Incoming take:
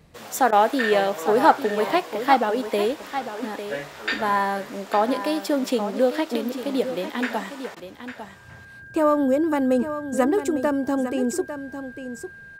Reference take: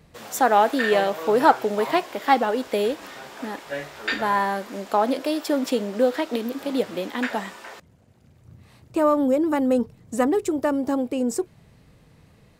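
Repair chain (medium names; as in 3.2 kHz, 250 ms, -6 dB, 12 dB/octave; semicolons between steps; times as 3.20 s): band-stop 1.6 kHz, Q 30; interpolate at 0.51/7.75 s, 13 ms; inverse comb 851 ms -10.5 dB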